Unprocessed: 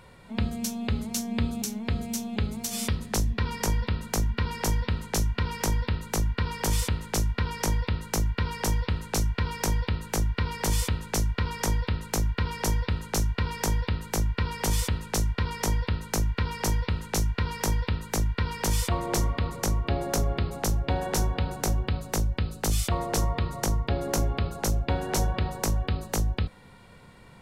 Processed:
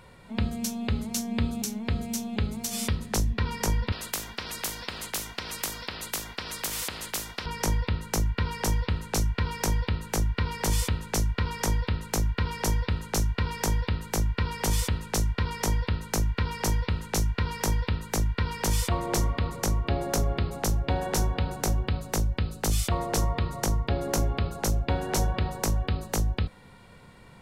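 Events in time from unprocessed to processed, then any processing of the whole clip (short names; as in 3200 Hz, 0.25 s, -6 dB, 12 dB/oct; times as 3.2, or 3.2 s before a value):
3.92–7.46 spectral compressor 4:1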